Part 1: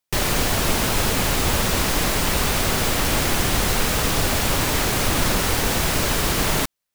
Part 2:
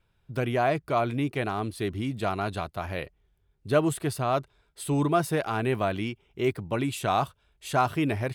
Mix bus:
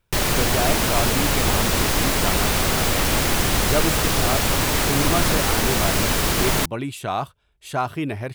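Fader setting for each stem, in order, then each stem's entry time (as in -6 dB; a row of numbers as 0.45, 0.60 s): +0.5, 0.0 dB; 0.00, 0.00 s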